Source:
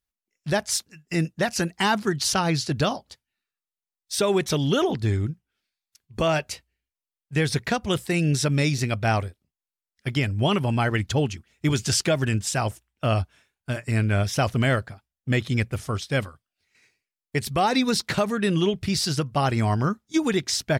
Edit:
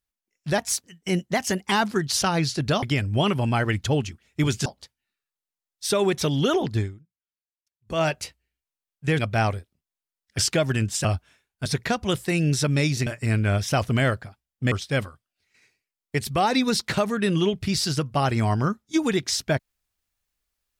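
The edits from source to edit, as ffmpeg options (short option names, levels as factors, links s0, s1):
-filter_complex "[0:a]asplit=13[s0][s1][s2][s3][s4][s5][s6][s7][s8][s9][s10][s11][s12];[s0]atrim=end=0.584[s13];[s1]atrim=start=0.58:end=1.83,asetpts=PTS-STARTPTS,asetrate=48510,aresample=44100[s14];[s2]atrim=start=1.826:end=2.942[s15];[s3]atrim=start=10.078:end=11.912[s16];[s4]atrim=start=2.938:end=5.28,asetpts=PTS-STARTPTS,afade=t=out:st=2.132:d=0.21:c=qua:silence=0.0630957[s17];[s5]atrim=start=5.28:end=6.08,asetpts=PTS-STARTPTS,volume=0.0631[s18];[s6]atrim=start=6.08:end=7.472,asetpts=PTS-STARTPTS,afade=t=in:d=0.21:c=qua:silence=0.0630957[s19];[s7]atrim=start=8.878:end=10.082[s20];[s8]atrim=start=11.908:end=12.572[s21];[s9]atrim=start=13.108:end=13.722[s22];[s10]atrim=start=7.468:end=8.882[s23];[s11]atrim=start=13.718:end=15.372[s24];[s12]atrim=start=15.918[s25];[s13][s14]acrossfade=d=0.004:c1=hsin:c2=hsin[s26];[s26][s15]acrossfade=d=0.004:c1=hsin:c2=hsin[s27];[s27][s16]acrossfade=d=0.004:c1=hsin:c2=hsin[s28];[s17][s18][s19]concat=n=3:v=0:a=1[s29];[s28][s29]acrossfade=d=0.004:c1=hsin:c2=hsin[s30];[s30][s20]acrossfade=d=0.004:c1=hsin:c2=hsin[s31];[s31][s21]acrossfade=d=0.004:c1=hsin:c2=hsin[s32];[s32][s22]acrossfade=d=0.004:c1=hsin:c2=hsin[s33];[s33][s23]acrossfade=d=0.004:c1=hsin:c2=hsin[s34];[s34][s24]acrossfade=d=0.004:c1=hsin:c2=hsin[s35];[s35][s25]acrossfade=d=0.004:c1=hsin:c2=hsin"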